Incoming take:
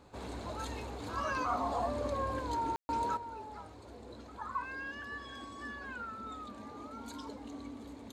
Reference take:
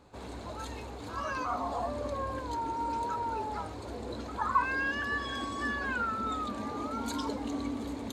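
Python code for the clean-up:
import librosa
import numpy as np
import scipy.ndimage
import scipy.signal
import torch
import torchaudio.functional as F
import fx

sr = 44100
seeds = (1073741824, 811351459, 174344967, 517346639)

y = fx.fix_ambience(x, sr, seeds[0], print_start_s=3.67, print_end_s=4.17, start_s=2.76, end_s=2.89)
y = fx.gain(y, sr, db=fx.steps((0.0, 0.0), (3.17, 10.5)))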